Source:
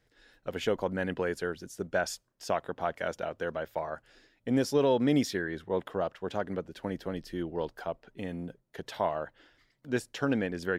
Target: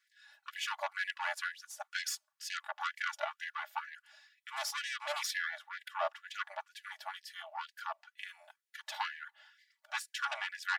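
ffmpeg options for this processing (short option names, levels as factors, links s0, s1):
-af "aeval=exprs='0.178*(cos(1*acos(clip(val(0)/0.178,-1,1)))-cos(1*PI/2))+0.0282*(cos(6*acos(clip(val(0)/0.178,-1,1)))-cos(6*PI/2))':c=same,aecho=1:1:3.5:0.86,afftfilt=real='re*gte(b*sr/1024,570*pow(1600/570,0.5+0.5*sin(2*PI*2.1*pts/sr)))':imag='im*gte(b*sr/1024,570*pow(1600/570,0.5+0.5*sin(2*PI*2.1*pts/sr)))':win_size=1024:overlap=0.75,volume=0.794"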